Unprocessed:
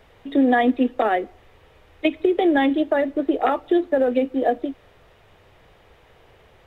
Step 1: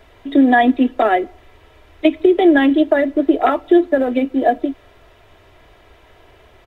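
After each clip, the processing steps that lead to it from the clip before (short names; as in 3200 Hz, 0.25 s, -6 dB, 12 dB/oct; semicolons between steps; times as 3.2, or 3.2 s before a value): comb 3 ms, depth 48%; gain +4 dB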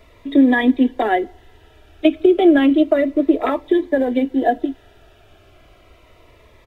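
cascading phaser falling 0.32 Hz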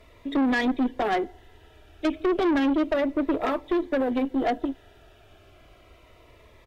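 tube stage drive 17 dB, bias 0.4; gain -2.5 dB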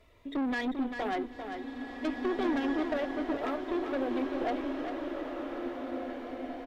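on a send: feedback echo 0.395 s, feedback 23%, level -7.5 dB; on the sum: bloom reverb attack 2.1 s, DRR 3.5 dB; gain -8.5 dB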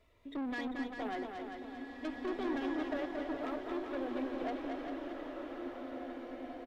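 echo 0.228 s -5 dB; gain -7 dB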